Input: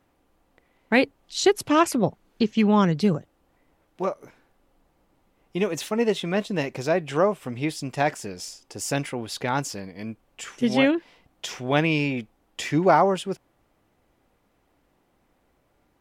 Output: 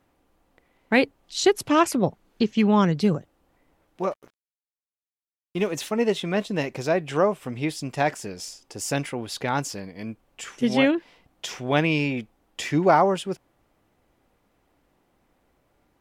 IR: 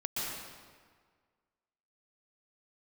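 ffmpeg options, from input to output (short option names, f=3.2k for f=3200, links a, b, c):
-filter_complex "[0:a]asettb=1/sr,asplit=3[a][b][c];[a]atrim=end=4.114[d];[b]atrim=start=4.11:end=5.72,asetpts=PTS-STARTPTS,afade=t=in:d=0.004:c=qsin,afade=t=out:st=1.606:d=0.004:c=qsin,aeval=exprs='sgn(val(0))*max(abs(val(0))-0.00447,0)':c=same[e];[c]atrim=start=5.716[f];[d][e]acrossfade=d=0.004:c1=hsin:c2=qsin[g];[g][f]acrossfade=d=0.004:c1=qsin:c2=hsin"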